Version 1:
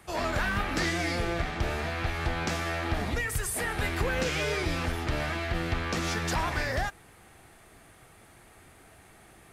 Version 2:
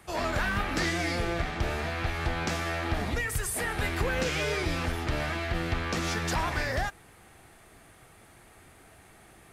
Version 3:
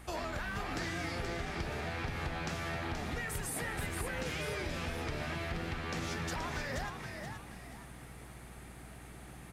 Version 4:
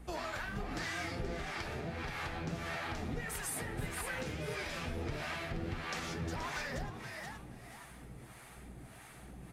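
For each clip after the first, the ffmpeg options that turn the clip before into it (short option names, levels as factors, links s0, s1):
-af anull
-filter_complex "[0:a]acompressor=threshold=0.0158:ratio=6,aeval=exprs='val(0)+0.00251*(sin(2*PI*60*n/s)+sin(2*PI*2*60*n/s)/2+sin(2*PI*3*60*n/s)/3+sin(2*PI*4*60*n/s)/4+sin(2*PI*5*60*n/s)/5)':c=same,asplit=2[s0][s1];[s1]asplit=4[s2][s3][s4][s5];[s2]adelay=477,afreqshift=75,volume=0.501[s6];[s3]adelay=954,afreqshift=150,volume=0.17[s7];[s4]adelay=1431,afreqshift=225,volume=0.0582[s8];[s5]adelay=1908,afreqshift=300,volume=0.0197[s9];[s6][s7][s8][s9]amix=inputs=4:normalize=0[s10];[s0][s10]amix=inputs=2:normalize=0"
-filter_complex "[0:a]flanger=delay=3.8:depth=6.3:regen=-38:speed=1.5:shape=triangular,acrossover=split=600[s0][s1];[s0]aeval=exprs='val(0)*(1-0.7/2+0.7/2*cos(2*PI*1.6*n/s))':c=same[s2];[s1]aeval=exprs='val(0)*(1-0.7/2-0.7/2*cos(2*PI*1.6*n/s))':c=same[s3];[s2][s3]amix=inputs=2:normalize=0,volume=1.88"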